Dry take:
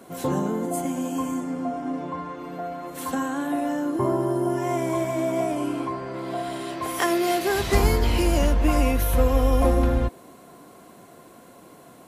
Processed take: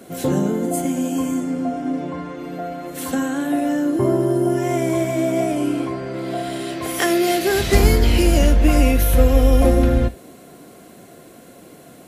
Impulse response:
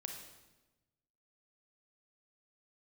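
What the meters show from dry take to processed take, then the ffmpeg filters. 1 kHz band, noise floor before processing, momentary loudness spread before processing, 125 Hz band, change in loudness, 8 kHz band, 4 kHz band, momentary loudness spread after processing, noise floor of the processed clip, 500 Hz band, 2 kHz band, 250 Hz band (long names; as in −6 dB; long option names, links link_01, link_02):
+1.0 dB, −49 dBFS, 10 LU, +6.0 dB, +5.5 dB, +6.0 dB, +6.0 dB, 11 LU, −44 dBFS, +5.0 dB, +5.0 dB, +6.0 dB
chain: -filter_complex "[0:a]equalizer=frequency=1000:width=2.3:gain=-10.5,asplit=2[link_01][link_02];[1:a]atrim=start_sample=2205,atrim=end_sample=3528,asetrate=52920,aresample=44100[link_03];[link_02][link_03]afir=irnorm=-1:irlink=0,volume=-0.5dB[link_04];[link_01][link_04]amix=inputs=2:normalize=0,volume=2.5dB"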